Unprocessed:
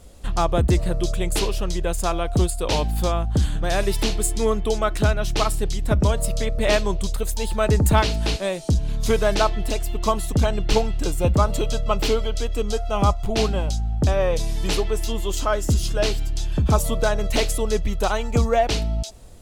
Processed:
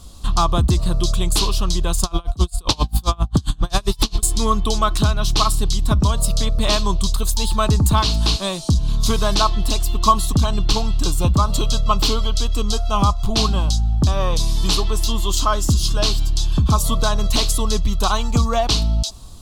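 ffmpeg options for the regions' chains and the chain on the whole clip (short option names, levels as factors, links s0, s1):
-filter_complex "[0:a]asettb=1/sr,asplit=3[s0][s1][s2];[s0]atrim=end=2.034[s3];[s1]atrim=start=2.03:end=4.23,asetpts=PTS-STARTPTS,afade=t=in:d=0.004:c=qsin,afade=t=out:st=2.196:d=0.004:c=qsin,acontrast=55,aeval=exprs='val(0)*pow(10,-34*(0.5-0.5*cos(2*PI*7.5*n/s))/20)':c=same[s4];[s2]atrim=start=4.226[s5];[s3][s4]acrossfade=d=0.004:c1=hsin:c2=qsin[s6];[s6][s5]acrossfade=d=0.004:c1=qsin:c2=hsin,equalizer=f=500:t=o:w=1:g=-11,equalizer=f=2000:t=o:w=1:g=-12,equalizer=f=4000:t=o:w=1:g=8,acompressor=threshold=0.112:ratio=6,equalizer=f=1100:t=o:w=0.33:g=11,volume=2.11"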